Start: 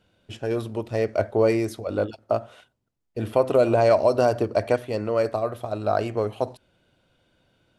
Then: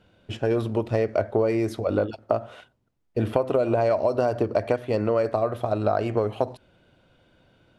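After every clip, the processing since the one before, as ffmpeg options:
-af "highshelf=f=4500:g=-10,acompressor=threshold=0.0562:ratio=6,volume=2"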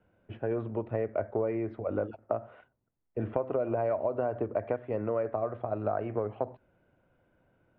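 -filter_complex "[0:a]lowpass=f=2200:w=0.5412,lowpass=f=2200:w=1.3066,acrossover=split=160|830[s0][s1][s2];[s1]crystalizer=i=9:c=0[s3];[s0][s3][s2]amix=inputs=3:normalize=0,volume=0.355"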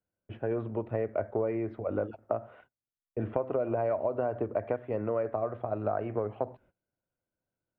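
-af "agate=range=0.0794:threshold=0.00112:ratio=16:detection=peak"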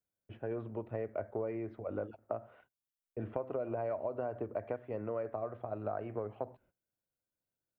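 -af "crystalizer=i=1:c=0,volume=0.447"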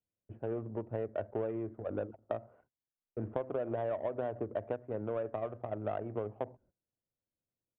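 -af "adynamicsmooth=sensitivity=3:basefreq=800,aresample=8000,aresample=44100,volume=1.26"

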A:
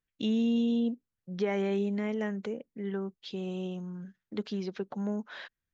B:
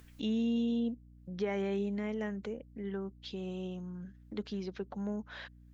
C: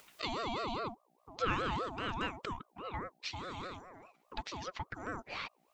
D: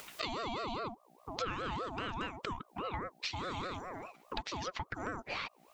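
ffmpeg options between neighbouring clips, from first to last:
-af "acompressor=mode=upward:threshold=0.0158:ratio=2.5,aeval=exprs='val(0)+0.00282*(sin(2*PI*60*n/s)+sin(2*PI*2*60*n/s)/2+sin(2*PI*3*60*n/s)/3+sin(2*PI*4*60*n/s)/4+sin(2*PI*5*60*n/s)/5)':c=same,volume=0.631"
-af "highpass=540,aeval=exprs='val(0)*sin(2*PI*690*n/s+690*0.35/4.9*sin(2*PI*4.9*n/s))':c=same,volume=2.66"
-af "acompressor=threshold=0.00501:ratio=5,volume=3.16"

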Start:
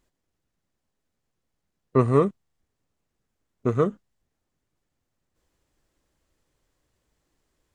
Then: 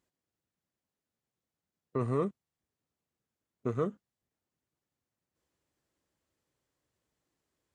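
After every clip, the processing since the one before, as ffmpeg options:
-af "highpass=87,alimiter=limit=0.237:level=0:latency=1:release=15,volume=0.398"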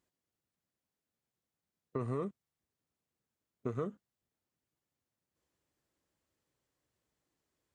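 -af "acompressor=threshold=0.0316:ratio=6,volume=0.841"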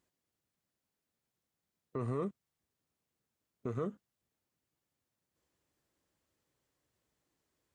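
-af "alimiter=level_in=1.78:limit=0.0631:level=0:latency=1:release=16,volume=0.562,volume=1.26"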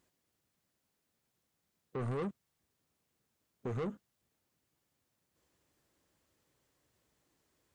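-af "asoftclip=type=tanh:threshold=0.0126,volume=1.88"

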